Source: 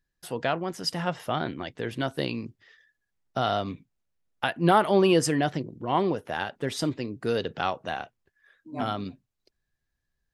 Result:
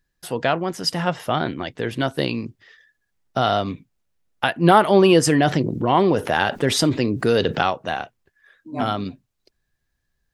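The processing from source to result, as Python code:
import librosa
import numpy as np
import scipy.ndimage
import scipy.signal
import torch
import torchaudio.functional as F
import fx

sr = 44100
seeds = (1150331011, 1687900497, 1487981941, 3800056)

y = fx.env_flatten(x, sr, amount_pct=50, at=(5.27, 7.63))
y = y * 10.0 ** (6.5 / 20.0)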